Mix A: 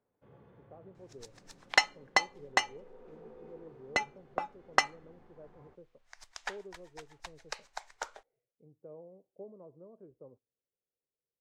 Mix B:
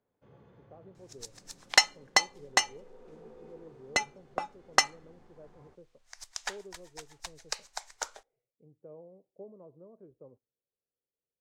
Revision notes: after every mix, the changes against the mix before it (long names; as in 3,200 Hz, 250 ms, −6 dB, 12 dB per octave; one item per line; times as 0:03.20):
second sound: send +6.5 dB
master: add bass and treble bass +1 dB, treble +11 dB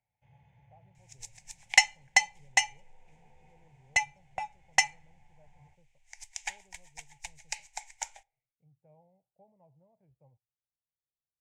second sound: send +7.0 dB
master: add drawn EQ curve 140 Hz 0 dB, 230 Hz −18 dB, 410 Hz −25 dB, 860 Hz +2 dB, 1,200 Hz −24 dB, 2,200 Hz +7 dB, 4,300 Hz −10 dB, 7,200 Hz +2 dB, 15,000 Hz −9 dB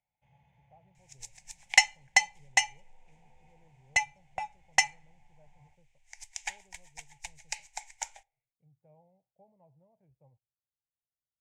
first sound: add graphic EQ with 15 bands 100 Hz −11 dB, 400 Hz −6 dB, 1,600 Hz −4 dB